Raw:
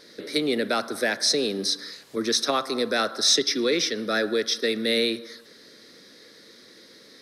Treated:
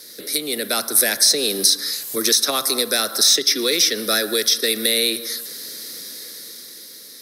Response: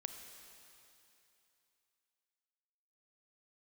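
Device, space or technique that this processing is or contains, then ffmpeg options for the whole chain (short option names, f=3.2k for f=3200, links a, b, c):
FM broadcast chain: -filter_complex "[0:a]highpass=67,dynaudnorm=f=210:g=11:m=8dB,acrossover=split=310|3200[a][b][c];[a]acompressor=threshold=-33dB:ratio=4[d];[b]acompressor=threshold=-20dB:ratio=4[e];[c]acompressor=threshold=-26dB:ratio=4[f];[d][e][f]amix=inputs=3:normalize=0,aemphasis=mode=production:type=50fm,alimiter=limit=-9dB:level=0:latency=1:release=295,asoftclip=type=hard:threshold=-11dB,lowpass=f=15k:w=0.5412,lowpass=f=15k:w=1.3066,aemphasis=mode=production:type=50fm"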